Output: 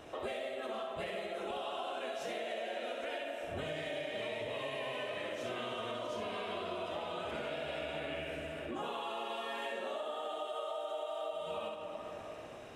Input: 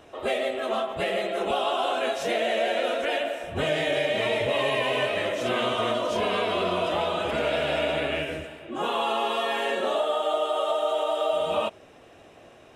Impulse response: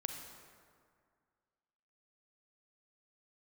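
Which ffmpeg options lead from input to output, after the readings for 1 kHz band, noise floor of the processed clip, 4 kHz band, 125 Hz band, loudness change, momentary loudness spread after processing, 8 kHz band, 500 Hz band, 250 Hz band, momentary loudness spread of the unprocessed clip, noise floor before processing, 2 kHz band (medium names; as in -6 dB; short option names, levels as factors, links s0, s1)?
-13.5 dB, -46 dBFS, -13.5 dB, -12.5 dB, -13.5 dB, 2 LU, -13.0 dB, -13.5 dB, -12.5 dB, 4 LU, -51 dBFS, -13.5 dB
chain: -filter_complex "[0:a]asplit=2[s0][s1];[1:a]atrim=start_sample=2205,adelay=64[s2];[s1][s2]afir=irnorm=-1:irlink=0,volume=0.668[s3];[s0][s3]amix=inputs=2:normalize=0,acompressor=threshold=0.0141:ratio=6,volume=0.891"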